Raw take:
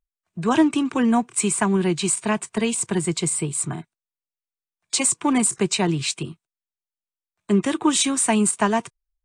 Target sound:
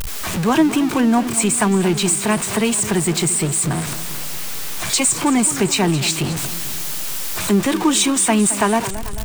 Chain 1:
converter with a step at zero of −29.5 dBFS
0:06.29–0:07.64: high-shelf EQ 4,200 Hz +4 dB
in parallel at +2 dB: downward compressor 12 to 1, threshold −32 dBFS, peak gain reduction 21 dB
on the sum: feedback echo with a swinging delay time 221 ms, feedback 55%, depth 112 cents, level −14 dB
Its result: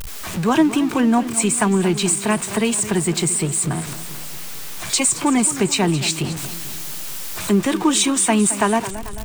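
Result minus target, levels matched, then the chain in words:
converter with a step at zero: distortion −5 dB
converter with a step at zero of −23 dBFS
0:06.29–0:07.64: high-shelf EQ 4,200 Hz +4 dB
in parallel at +2 dB: downward compressor 12 to 1, threshold −32 dBFS, peak gain reduction 21.5 dB
on the sum: feedback echo with a swinging delay time 221 ms, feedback 55%, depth 112 cents, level −14 dB

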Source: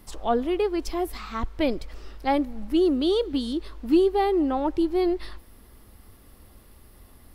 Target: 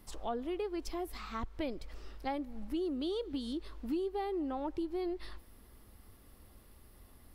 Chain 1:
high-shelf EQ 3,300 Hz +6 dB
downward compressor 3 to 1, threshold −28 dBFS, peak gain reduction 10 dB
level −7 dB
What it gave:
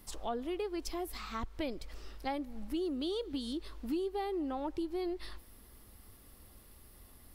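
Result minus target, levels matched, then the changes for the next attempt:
8,000 Hz band +5.0 dB
remove: high-shelf EQ 3,300 Hz +6 dB

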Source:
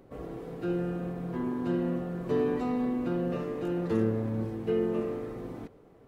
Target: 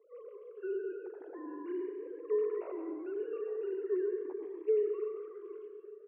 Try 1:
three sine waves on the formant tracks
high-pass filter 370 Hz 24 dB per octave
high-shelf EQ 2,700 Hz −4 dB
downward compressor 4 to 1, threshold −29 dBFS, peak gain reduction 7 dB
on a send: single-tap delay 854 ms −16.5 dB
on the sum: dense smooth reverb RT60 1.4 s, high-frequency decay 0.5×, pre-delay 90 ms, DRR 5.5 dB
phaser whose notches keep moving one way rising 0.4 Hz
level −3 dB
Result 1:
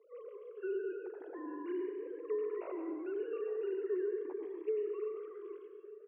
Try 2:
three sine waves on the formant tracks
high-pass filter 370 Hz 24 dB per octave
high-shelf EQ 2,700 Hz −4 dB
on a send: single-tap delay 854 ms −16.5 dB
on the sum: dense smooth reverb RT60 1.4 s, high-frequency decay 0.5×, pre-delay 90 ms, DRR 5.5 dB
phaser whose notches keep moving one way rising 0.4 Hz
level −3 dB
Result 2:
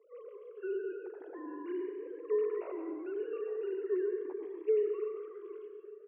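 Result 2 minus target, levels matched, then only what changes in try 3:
4,000 Hz band +4.5 dB
change: high-shelf EQ 2,700 Hz −13.5 dB

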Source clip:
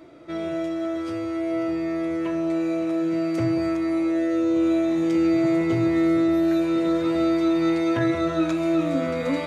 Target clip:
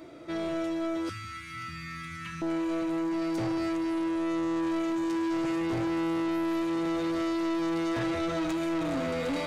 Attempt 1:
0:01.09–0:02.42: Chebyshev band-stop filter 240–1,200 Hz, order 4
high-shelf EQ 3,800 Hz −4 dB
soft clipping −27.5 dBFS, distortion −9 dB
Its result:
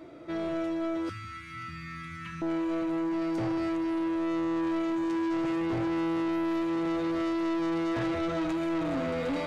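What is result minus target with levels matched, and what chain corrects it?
8,000 Hz band −6.5 dB
0:01.09–0:02.42: Chebyshev band-stop filter 240–1,200 Hz, order 4
high-shelf EQ 3,800 Hz +5.5 dB
soft clipping −27.5 dBFS, distortion −9 dB

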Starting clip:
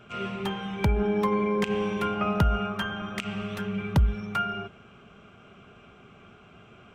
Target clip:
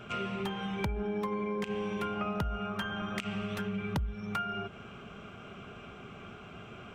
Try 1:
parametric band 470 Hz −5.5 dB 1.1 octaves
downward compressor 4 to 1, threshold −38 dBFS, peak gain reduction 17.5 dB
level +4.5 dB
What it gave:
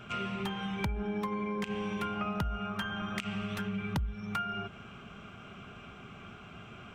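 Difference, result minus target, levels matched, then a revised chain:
500 Hz band −3.0 dB
downward compressor 4 to 1, threshold −38 dBFS, peak gain reduction 17.5 dB
level +4.5 dB

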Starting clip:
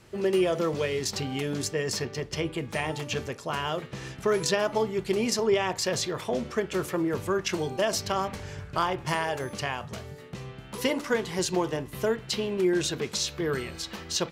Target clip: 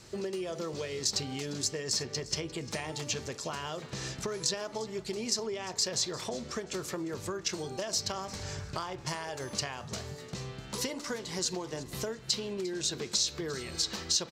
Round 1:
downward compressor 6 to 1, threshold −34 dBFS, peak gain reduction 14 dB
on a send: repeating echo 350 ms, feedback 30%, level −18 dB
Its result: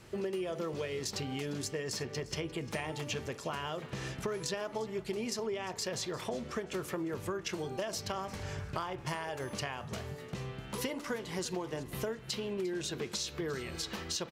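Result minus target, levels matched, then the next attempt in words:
4,000 Hz band −3.5 dB
downward compressor 6 to 1, threshold −34 dBFS, peak gain reduction 14 dB
flat-topped bell 5,600 Hz +9 dB 1.3 octaves
on a send: repeating echo 350 ms, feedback 30%, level −18 dB

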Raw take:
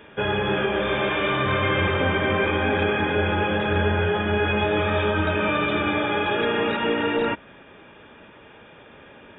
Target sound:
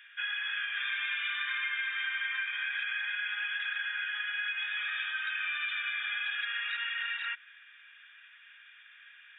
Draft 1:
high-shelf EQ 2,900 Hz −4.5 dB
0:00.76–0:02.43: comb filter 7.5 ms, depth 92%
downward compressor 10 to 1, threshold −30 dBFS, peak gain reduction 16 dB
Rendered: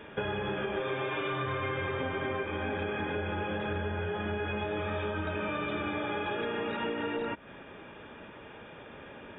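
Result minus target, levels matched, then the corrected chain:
2,000 Hz band −5.5 dB
elliptic high-pass filter 1,600 Hz, stop band 80 dB
high-shelf EQ 2,900 Hz −4.5 dB
0:00.76–0:02.43: comb filter 7.5 ms, depth 92%
downward compressor 10 to 1, threshold −30 dBFS, peak gain reduction 9 dB

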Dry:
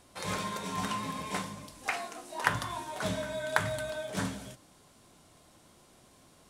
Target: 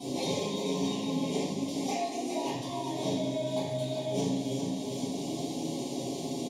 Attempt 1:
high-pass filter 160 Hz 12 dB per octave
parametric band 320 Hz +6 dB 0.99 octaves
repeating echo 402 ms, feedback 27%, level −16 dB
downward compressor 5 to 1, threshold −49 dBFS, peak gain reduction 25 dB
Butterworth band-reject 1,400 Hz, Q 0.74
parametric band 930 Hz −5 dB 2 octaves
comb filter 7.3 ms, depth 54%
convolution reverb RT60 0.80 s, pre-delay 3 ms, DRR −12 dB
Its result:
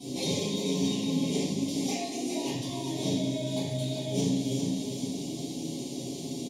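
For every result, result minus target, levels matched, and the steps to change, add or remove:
1,000 Hz band −7.5 dB; downward compressor: peak gain reduction −5 dB
change: second parametric band 930 Hz +6.5 dB 2 octaves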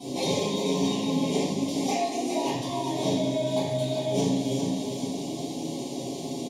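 downward compressor: peak gain reduction −5 dB
change: downward compressor 5 to 1, threshold −55.5 dBFS, peak gain reduction 30.5 dB

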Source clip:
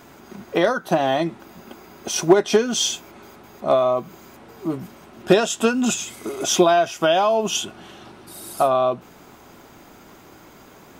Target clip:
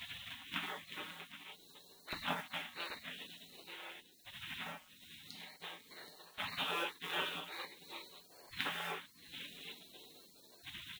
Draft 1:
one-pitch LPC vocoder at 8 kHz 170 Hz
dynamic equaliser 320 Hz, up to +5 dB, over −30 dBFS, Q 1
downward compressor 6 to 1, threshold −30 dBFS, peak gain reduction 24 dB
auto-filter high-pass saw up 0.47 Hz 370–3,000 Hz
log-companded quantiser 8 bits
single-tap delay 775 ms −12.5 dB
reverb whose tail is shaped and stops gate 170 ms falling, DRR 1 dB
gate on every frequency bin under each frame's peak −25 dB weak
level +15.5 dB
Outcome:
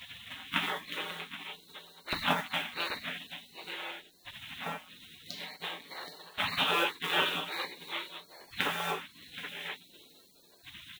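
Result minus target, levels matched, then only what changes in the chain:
downward compressor: peak gain reduction −9.5 dB
change: downward compressor 6 to 1, threshold −41.5 dBFS, peak gain reduction 33.5 dB

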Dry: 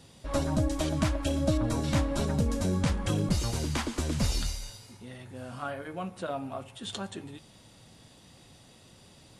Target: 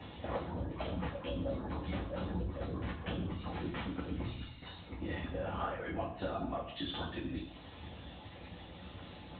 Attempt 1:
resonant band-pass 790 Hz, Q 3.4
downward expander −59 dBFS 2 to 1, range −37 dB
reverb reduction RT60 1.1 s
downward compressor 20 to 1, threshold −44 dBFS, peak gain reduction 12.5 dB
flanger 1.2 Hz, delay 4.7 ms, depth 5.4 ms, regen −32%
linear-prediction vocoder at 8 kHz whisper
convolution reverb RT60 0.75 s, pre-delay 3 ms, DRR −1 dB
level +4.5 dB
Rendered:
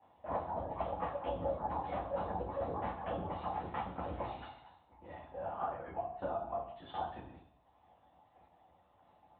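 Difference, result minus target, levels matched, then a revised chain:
1,000 Hz band +5.0 dB
downward expander −59 dBFS 2 to 1, range −37 dB
reverb reduction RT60 1.1 s
downward compressor 20 to 1, threshold −44 dBFS, peak gain reduction 22.5 dB
flanger 1.2 Hz, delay 4.7 ms, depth 5.4 ms, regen −32%
linear-prediction vocoder at 8 kHz whisper
convolution reverb RT60 0.75 s, pre-delay 3 ms, DRR −1 dB
level +4.5 dB

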